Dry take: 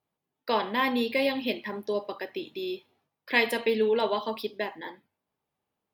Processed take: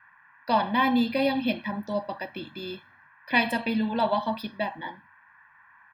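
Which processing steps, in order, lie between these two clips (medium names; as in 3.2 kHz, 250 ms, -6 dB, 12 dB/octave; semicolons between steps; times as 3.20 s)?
band noise 960–2000 Hz -58 dBFS; tilt EQ -2 dB/octave; comb 1.2 ms, depth 95%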